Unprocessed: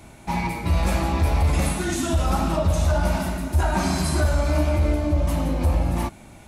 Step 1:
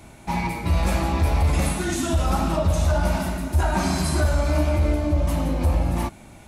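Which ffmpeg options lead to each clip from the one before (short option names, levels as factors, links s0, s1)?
-af anull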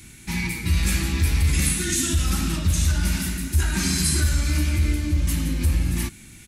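-af "firequalizer=gain_entry='entry(160,0);entry(360,-4);entry(620,-21);entry(1700,3);entry(7300,9)':delay=0.05:min_phase=1"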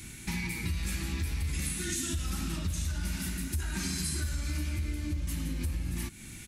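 -af "acompressor=threshold=0.0251:ratio=4"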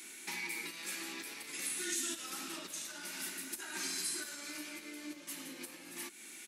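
-af "highpass=f=330:w=0.5412,highpass=f=330:w=1.3066,volume=0.794"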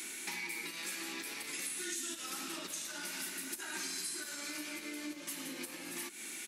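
-af "acompressor=threshold=0.00447:ratio=3,volume=2.24"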